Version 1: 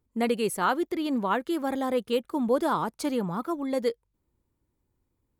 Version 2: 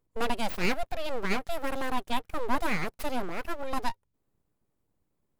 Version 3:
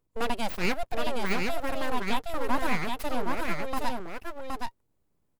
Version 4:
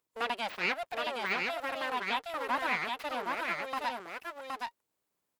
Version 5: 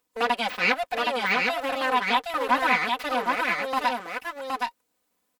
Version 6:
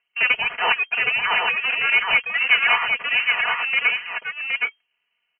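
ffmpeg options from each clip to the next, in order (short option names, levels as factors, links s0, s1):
-af "aeval=exprs='abs(val(0))':c=same"
-af "aecho=1:1:769:0.668"
-filter_complex "[0:a]acrossover=split=4200[s0][s1];[s1]acompressor=threshold=0.00126:ratio=4:attack=1:release=60[s2];[s0][s2]amix=inputs=2:normalize=0,highpass=f=1200:p=1,volume=1.33"
-af "aecho=1:1:4:0.8,volume=2.11"
-af "lowpass=f=2700:t=q:w=0.5098,lowpass=f=2700:t=q:w=0.6013,lowpass=f=2700:t=q:w=0.9,lowpass=f=2700:t=q:w=2.563,afreqshift=-3200,highshelf=f=2300:g=10.5"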